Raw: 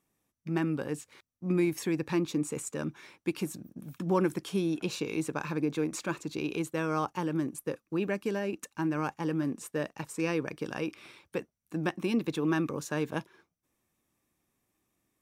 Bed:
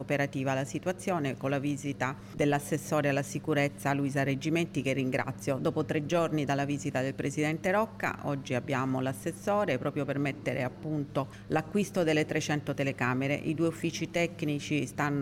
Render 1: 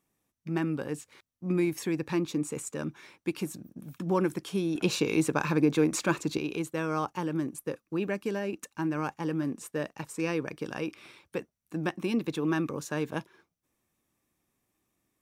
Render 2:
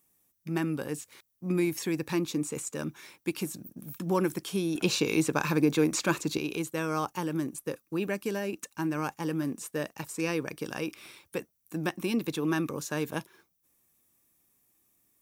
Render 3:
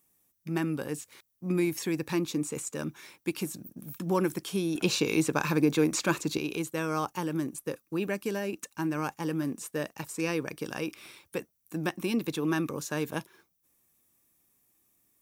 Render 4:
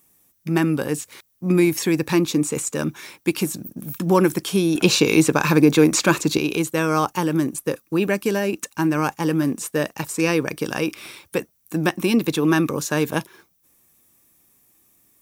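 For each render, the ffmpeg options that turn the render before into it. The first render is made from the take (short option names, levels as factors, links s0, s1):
-filter_complex "[0:a]asettb=1/sr,asplit=3[s0][s1][s2];[s0]atrim=end=4.754[s3];[s1]atrim=start=4.75:end=6.38,asetpts=PTS-STARTPTS,afade=t=in:d=0.004:c=qsin,afade=t=out:st=1.626:d=0.004:c=qsin,acontrast=59[s4];[s2]atrim=start=6.376[s5];[s3][s4]acrossfade=d=0.004:c1=hsin:c2=qsin[s6];[s6][s5]acrossfade=d=0.004:c1=qsin:c2=hsin"
-filter_complex "[0:a]acrossover=split=6500[s0][s1];[s1]acompressor=threshold=0.00224:ratio=4:attack=1:release=60[s2];[s0][s2]amix=inputs=2:normalize=0,aemphasis=mode=production:type=50fm"
-af anull
-af "volume=3.35,alimiter=limit=0.708:level=0:latency=1"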